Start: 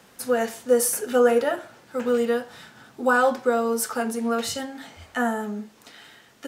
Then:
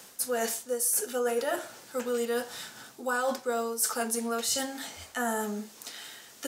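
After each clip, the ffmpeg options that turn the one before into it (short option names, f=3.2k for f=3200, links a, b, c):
-af "bass=f=250:g=-6,treble=f=4k:g=12,areverse,acompressor=threshold=-27dB:ratio=5,areverse"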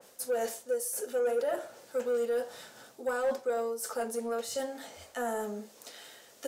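-af "equalizer=f=540:t=o:w=0.79:g=11,asoftclip=type=tanh:threshold=-16.5dB,adynamicequalizer=threshold=0.00794:dfrequency=2300:dqfactor=0.7:tfrequency=2300:tqfactor=0.7:attack=5:release=100:ratio=0.375:range=2:mode=cutabove:tftype=highshelf,volume=-6.5dB"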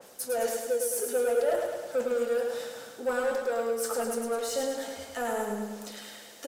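-filter_complex "[0:a]asplit=2[a][b];[b]asoftclip=type=hard:threshold=-39dB,volume=-6dB[c];[a][c]amix=inputs=2:normalize=0,aphaser=in_gain=1:out_gain=1:delay=4.4:decay=0.23:speed=0.52:type=sinusoidal,aecho=1:1:105|210|315|420|525|630|735|840:0.562|0.332|0.196|0.115|0.0681|0.0402|0.0237|0.014"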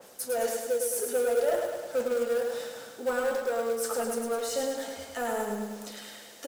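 -af "acrusher=bits=5:mode=log:mix=0:aa=0.000001"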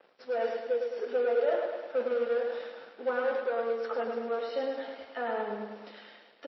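-filter_complex "[0:a]aeval=exprs='sgn(val(0))*max(abs(val(0))-0.00266,0)':c=same,acrossover=split=210 3600:gain=0.0794 1 0.0708[a][b][c];[a][b][c]amix=inputs=3:normalize=0" -ar 16000 -c:a libmp3lame -b:a 24k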